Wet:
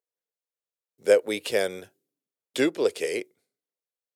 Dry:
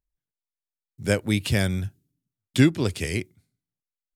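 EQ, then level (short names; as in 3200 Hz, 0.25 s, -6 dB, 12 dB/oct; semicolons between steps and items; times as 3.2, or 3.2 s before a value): resonant high-pass 470 Hz, resonance Q 4.5; -3.0 dB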